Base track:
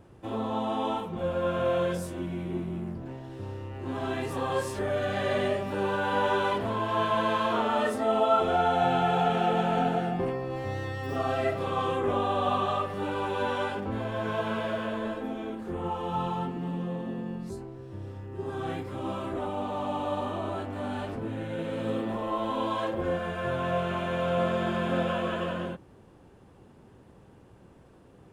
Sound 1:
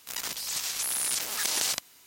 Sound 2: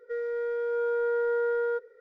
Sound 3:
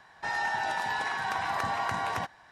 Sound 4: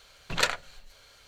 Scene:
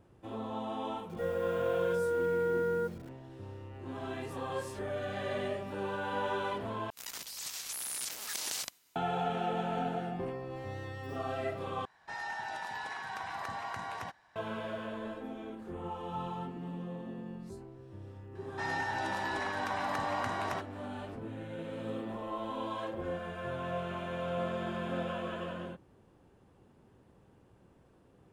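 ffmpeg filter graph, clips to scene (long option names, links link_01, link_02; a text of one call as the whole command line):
ffmpeg -i bed.wav -i cue0.wav -i cue1.wav -i cue2.wav -filter_complex "[3:a]asplit=2[link_01][link_02];[0:a]volume=-8dB[link_03];[2:a]acrusher=bits=8:mix=0:aa=0.000001[link_04];[1:a]agate=range=-33dB:threshold=-53dB:ratio=3:release=100:detection=peak[link_05];[link_03]asplit=3[link_06][link_07][link_08];[link_06]atrim=end=6.904[link_09];[link_05]atrim=end=2.06,asetpts=PTS-STARTPTS,volume=-9dB[link_10];[link_07]atrim=start=8.956:end=11.854[link_11];[link_01]atrim=end=2.51,asetpts=PTS-STARTPTS,volume=-9dB[link_12];[link_08]atrim=start=14.356[link_13];[link_04]atrim=end=2,asetpts=PTS-STARTPTS,volume=-4dB,afade=type=in:duration=0.004:curve=hsin,afade=type=out:start_time=1.996:duration=0.004:curve=hsin,adelay=1090[link_14];[link_02]atrim=end=2.51,asetpts=PTS-STARTPTS,volume=-5dB,afade=type=in:duration=0.004:curve=hsin,afade=type=out:start_time=2.506:duration=0.004:curve=hsin,adelay=18350[link_15];[link_09][link_10]acrossfade=duration=0.004:curve1=hsin:curve2=hsin[link_16];[link_16][link_11]acrossfade=duration=0.004:curve1=hsin:curve2=hsin[link_17];[link_17][link_12]acrossfade=duration=0.004:curve1=hsin:curve2=hsin[link_18];[link_18][link_13]acrossfade=duration=0.004:curve1=hsin:curve2=hsin[link_19];[link_19][link_14][link_15]amix=inputs=3:normalize=0" out.wav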